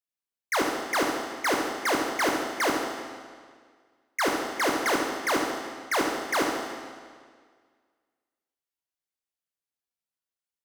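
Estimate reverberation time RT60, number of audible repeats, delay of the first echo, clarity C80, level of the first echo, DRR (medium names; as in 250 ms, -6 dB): 1.8 s, 1, 72 ms, 3.5 dB, -8.0 dB, -0.5 dB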